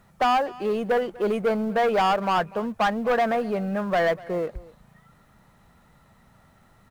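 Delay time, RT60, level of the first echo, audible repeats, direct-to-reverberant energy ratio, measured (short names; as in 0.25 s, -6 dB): 0.245 s, none, -21.0 dB, 1, none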